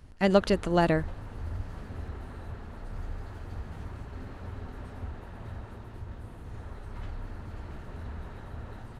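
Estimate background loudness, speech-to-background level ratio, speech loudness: −42.5 LKFS, 17.0 dB, −25.5 LKFS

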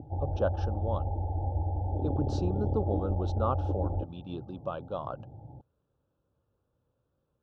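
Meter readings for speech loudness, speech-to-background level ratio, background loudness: −36.0 LKFS, −3.5 dB, −32.5 LKFS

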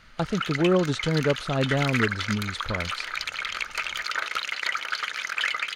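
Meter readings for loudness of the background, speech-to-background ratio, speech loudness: −29.0 LKFS, 2.5 dB, −26.5 LKFS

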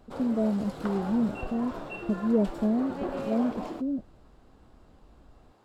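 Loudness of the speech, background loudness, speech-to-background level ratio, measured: −29.5 LKFS, −38.0 LKFS, 8.5 dB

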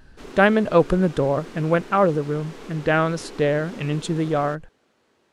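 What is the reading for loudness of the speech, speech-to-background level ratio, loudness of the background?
−21.5 LKFS, 19.0 dB, −40.5 LKFS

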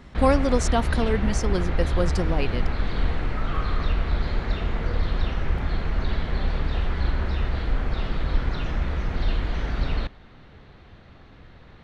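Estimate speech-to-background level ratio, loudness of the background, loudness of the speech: 2.0 dB, −28.0 LKFS, −26.0 LKFS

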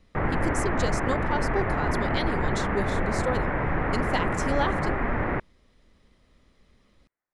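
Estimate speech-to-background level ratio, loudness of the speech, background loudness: −5.0 dB, −32.5 LKFS, −27.5 LKFS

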